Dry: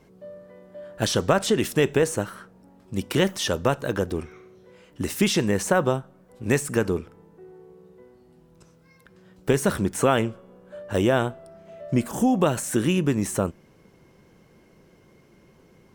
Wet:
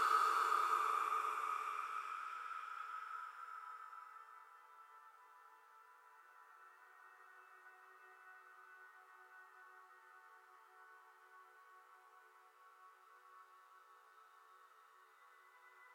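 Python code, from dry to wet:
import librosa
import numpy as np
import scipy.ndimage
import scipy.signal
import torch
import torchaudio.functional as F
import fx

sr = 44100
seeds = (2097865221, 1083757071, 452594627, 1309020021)

y = fx.ladder_highpass(x, sr, hz=1200.0, resonance_pct=75)
y = fx.paulstretch(y, sr, seeds[0], factor=15.0, window_s=0.25, from_s=6.91)
y = y * 10.0 ** (9.5 / 20.0)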